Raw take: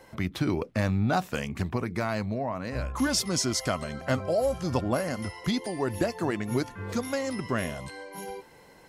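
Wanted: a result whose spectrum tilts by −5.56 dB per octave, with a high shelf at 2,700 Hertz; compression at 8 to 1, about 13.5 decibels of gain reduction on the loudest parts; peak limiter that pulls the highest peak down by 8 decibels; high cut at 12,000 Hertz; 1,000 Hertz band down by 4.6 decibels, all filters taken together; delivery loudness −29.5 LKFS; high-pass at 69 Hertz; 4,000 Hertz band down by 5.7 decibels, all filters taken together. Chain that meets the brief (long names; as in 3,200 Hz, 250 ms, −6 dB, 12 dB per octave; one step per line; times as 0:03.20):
high-pass filter 69 Hz
low-pass filter 12,000 Hz
parametric band 1,000 Hz −6 dB
high-shelf EQ 2,700 Hz −3.5 dB
parametric band 4,000 Hz −4 dB
downward compressor 8 to 1, threshold −37 dBFS
level +14 dB
brickwall limiter −19.5 dBFS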